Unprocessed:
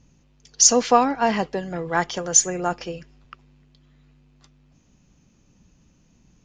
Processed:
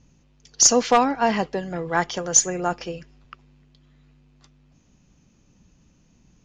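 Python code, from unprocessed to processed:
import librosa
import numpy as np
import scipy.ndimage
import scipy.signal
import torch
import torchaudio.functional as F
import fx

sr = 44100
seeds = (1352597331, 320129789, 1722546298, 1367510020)

y = np.minimum(x, 2.0 * 10.0 ** (-6.0 / 20.0) - x)
y = scipy.signal.sosfilt(scipy.signal.butter(4, 8600.0, 'lowpass', fs=sr, output='sos'), y)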